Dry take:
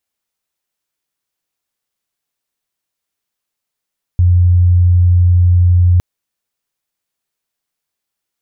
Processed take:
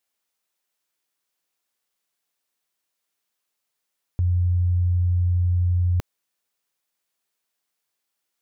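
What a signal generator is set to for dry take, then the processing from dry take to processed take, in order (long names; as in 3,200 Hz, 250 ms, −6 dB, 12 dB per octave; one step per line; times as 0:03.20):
tone sine 88.8 Hz −6 dBFS 1.81 s
low-shelf EQ 150 Hz −12 dB
brickwall limiter −17 dBFS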